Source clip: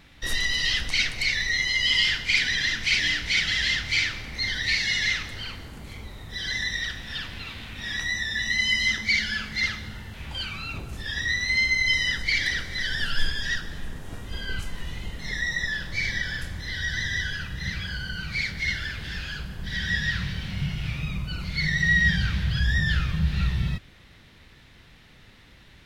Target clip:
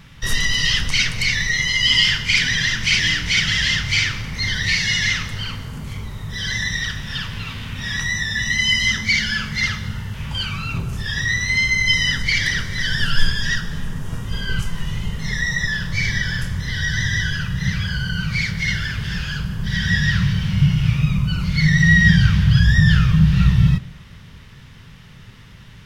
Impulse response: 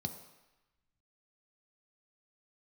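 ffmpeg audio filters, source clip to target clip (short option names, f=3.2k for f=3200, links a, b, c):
-filter_complex "[0:a]asplit=2[a][b];[1:a]atrim=start_sample=2205,highshelf=f=7.1k:g=-11[c];[b][c]afir=irnorm=-1:irlink=0,volume=-8dB[d];[a][d]amix=inputs=2:normalize=0,volume=7.5dB"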